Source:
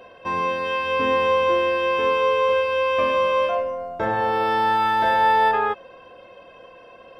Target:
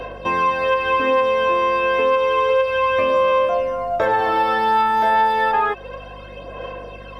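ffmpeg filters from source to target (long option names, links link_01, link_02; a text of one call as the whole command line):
ffmpeg -i in.wav -filter_complex "[0:a]aphaser=in_gain=1:out_gain=1:delay=4.7:decay=0.5:speed=0.3:type=sinusoidal,aeval=exprs='val(0)+0.00501*(sin(2*PI*50*n/s)+sin(2*PI*2*50*n/s)/2+sin(2*PI*3*50*n/s)/3+sin(2*PI*4*50*n/s)/4+sin(2*PI*5*50*n/s)/5)':channel_layout=same,acrossover=split=320|2300[link_01][link_02][link_03];[link_01]acompressor=threshold=-46dB:ratio=4[link_04];[link_02]acompressor=threshold=-25dB:ratio=4[link_05];[link_03]acompressor=threshold=-44dB:ratio=4[link_06];[link_04][link_05][link_06]amix=inputs=3:normalize=0,volume=8.5dB" out.wav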